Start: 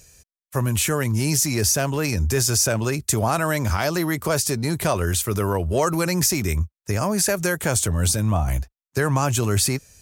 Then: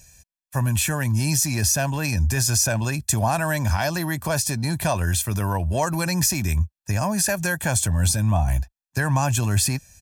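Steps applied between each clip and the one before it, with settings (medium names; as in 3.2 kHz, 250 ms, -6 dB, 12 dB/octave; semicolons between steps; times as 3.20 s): comb 1.2 ms, depth 67%; trim -2.5 dB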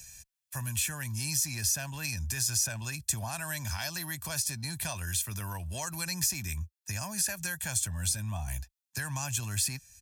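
amplifier tone stack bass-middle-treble 5-5-5; three bands compressed up and down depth 40%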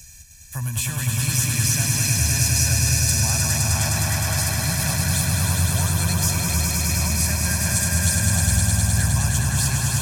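bass shelf 190 Hz +8 dB; echo with a slow build-up 103 ms, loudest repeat 5, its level -3.5 dB; trim +4 dB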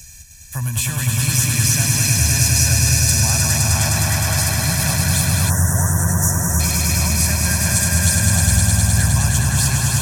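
time-frequency box 5.50–6.60 s, 2–5.3 kHz -25 dB; trim +4 dB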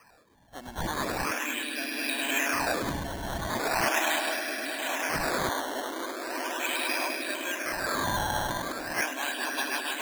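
rotary cabinet horn 0.7 Hz, later 7 Hz, at 8.63 s; brick-wall FIR band-pass 250–3600 Hz; decimation with a swept rate 12×, swing 100% 0.39 Hz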